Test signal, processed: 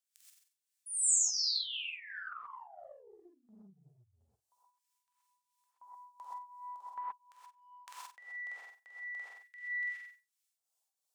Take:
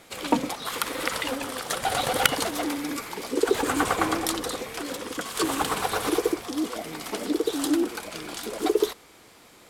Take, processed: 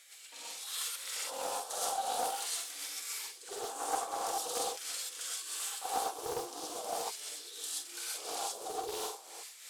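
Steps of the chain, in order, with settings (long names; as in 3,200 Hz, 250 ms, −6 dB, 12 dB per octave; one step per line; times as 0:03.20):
on a send: flutter between parallel walls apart 7.9 metres, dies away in 0.33 s
on the sum: amplitude tremolo 2.9 Hz, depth 83%
reversed playback
downward compressor 6 to 1, threshold −40 dBFS
reversed playback
octave-band graphic EQ 500/1,000/2,000/8,000 Hz +4/−7/−10/+6 dB
auto-filter high-pass square 0.43 Hz 820–1,900 Hz
reverb whose tail is shaped and stops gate 150 ms rising, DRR −7.5 dB
dynamic equaliser 2,000 Hz, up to −5 dB, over −56 dBFS, Q 1.8
highs frequency-modulated by the lows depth 0.32 ms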